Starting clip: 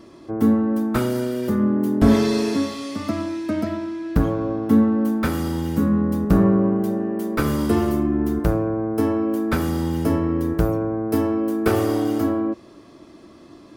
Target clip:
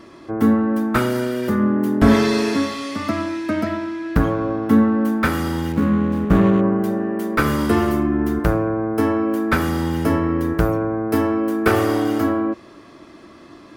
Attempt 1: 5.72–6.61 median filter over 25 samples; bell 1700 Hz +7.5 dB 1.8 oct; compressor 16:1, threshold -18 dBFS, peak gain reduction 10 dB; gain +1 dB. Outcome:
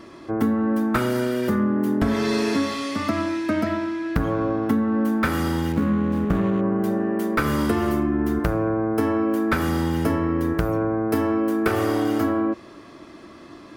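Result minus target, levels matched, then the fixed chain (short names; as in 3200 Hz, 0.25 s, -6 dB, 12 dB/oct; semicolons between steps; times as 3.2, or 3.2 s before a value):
compressor: peak gain reduction +10 dB
5.72–6.61 median filter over 25 samples; bell 1700 Hz +7.5 dB 1.8 oct; gain +1 dB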